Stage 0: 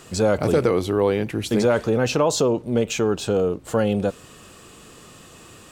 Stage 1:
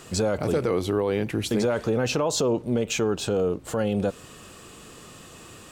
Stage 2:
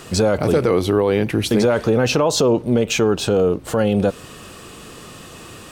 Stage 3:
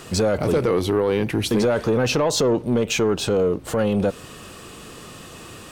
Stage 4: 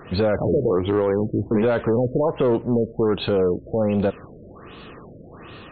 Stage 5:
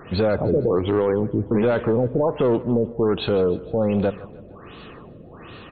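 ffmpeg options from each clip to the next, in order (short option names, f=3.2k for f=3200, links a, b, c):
-af "alimiter=limit=-14.5dB:level=0:latency=1:release=127"
-af "equalizer=f=7.3k:w=4.7:g=-5.5,volume=7.5dB"
-af "asoftclip=type=tanh:threshold=-10dB,volume=-1.5dB"
-af "afftfilt=real='re*lt(b*sr/1024,640*pow(4500/640,0.5+0.5*sin(2*PI*1.3*pts/sr)))':imag='im*lt(b*sr/1024,640*pow(4500/640,0.5+0.5*sin(2*PI*1.3*pts/sr)))':win_size=1024:overlap=0.75"
-af "aecho=1:1:153|306|459|612:0.119|0.0594|0.0297|0.0149"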